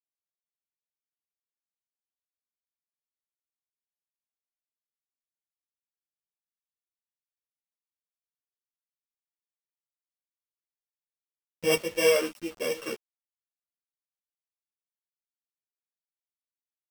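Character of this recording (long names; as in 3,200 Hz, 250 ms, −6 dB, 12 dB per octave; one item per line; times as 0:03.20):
a buzz of ramps at a fixed pitch in blocks of 16 samples
tremolo saw up 1.7 Hz, depth 75%
a quantiser's noise floor 8 bits, dither none
a shimmering, thickened sound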